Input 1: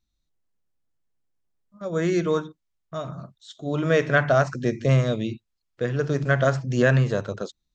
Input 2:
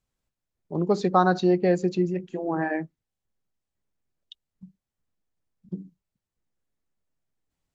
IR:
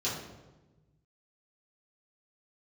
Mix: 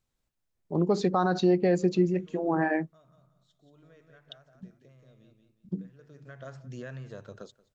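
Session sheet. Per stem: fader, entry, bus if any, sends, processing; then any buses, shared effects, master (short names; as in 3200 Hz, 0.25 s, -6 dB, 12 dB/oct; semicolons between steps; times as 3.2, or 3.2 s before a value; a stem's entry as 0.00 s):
-10.0 dB, 0.00 s, no send, echo send -22.5 dB, compressor 5:1, threshold -29 dBFS, peak gain reduction 13.5 dB; auto duck -17 dB, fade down 1.90 s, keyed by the second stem
+0.5 dB, 0.00 s, no send, no echo send, dry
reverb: off
echo: feedback echo 0.179 s, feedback 29%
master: limiter -14 dBFS, peak gain reduction 8 dB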